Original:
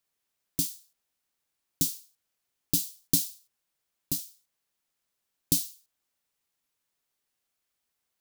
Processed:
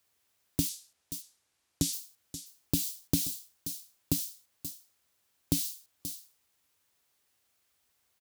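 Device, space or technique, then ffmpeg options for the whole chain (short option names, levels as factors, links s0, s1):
car stereo with a boomy subwoofer: -filter_complex "[0:a]lowshelf=f=110:t=q:w=1.5:g=7,alimiter=limit=0.224:level=0:latency=1:release=99,asplit=3[s0][s1][s2];[s0]afade=t=out:st=0.68:d=0.02[s3];[s1]lowpass=10000,afade=t=in:st=0.68:d=0.02,afade=t=out:st=1.92:d=0.02[s4];[s2]afade=t=in:st=1.92:d=0.02[s5];[s3][s4][s5]amix=inputs=3:normalize=0,aecho=1:1:530:0.15,acrossover=split=2700[s6][s7];[s7]acompressor=threshold=0.0178:ratio=4:attack=1:release=60[s8];[s6][s8]amix=inputs=2:normalize=0,highpass=84,volume=2.37"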